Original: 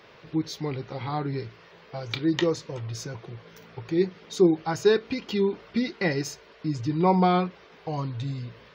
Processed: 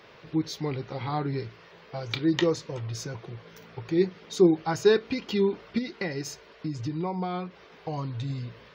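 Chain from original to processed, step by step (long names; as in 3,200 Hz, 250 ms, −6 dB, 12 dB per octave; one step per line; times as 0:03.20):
0:05.78–0:08.30: downward compressor 6 to 1, threshold −28 dBFS, peak gain reduction 12.5 dB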